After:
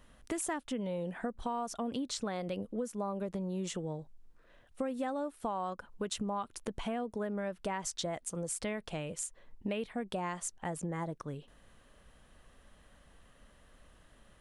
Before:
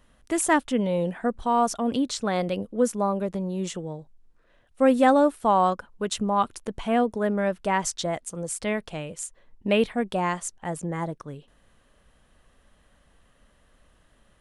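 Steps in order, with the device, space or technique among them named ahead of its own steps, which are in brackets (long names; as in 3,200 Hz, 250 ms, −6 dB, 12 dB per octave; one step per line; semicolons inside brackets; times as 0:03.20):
serial compression, peaks first (downward compressor, threshold −28 dBFS, peak gain reduction 14 dB; downward compressor 1.5 to 1, threshold −41 dBFS, peak gain reduction 6 dB)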